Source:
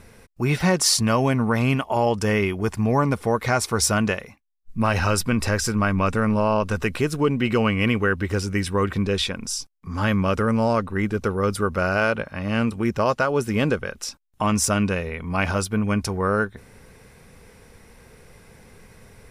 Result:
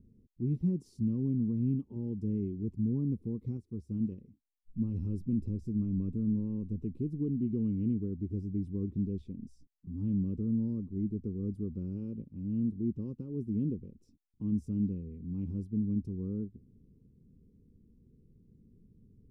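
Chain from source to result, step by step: inverse Chebyshev low-pass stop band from 610 Hz, stop band 40 dB; bass shelf 130 Hz -8.5 dB; 3.57–4.12 s: upward expansion 1.5:1, over -44 dBFS; trim -5 dB

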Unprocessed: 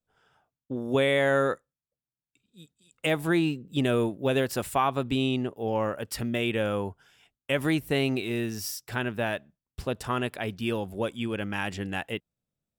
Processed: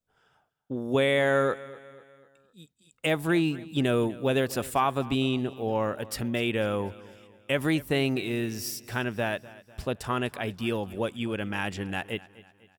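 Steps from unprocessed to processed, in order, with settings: feedback delay 248 ms, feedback 47%, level -19.5 dB

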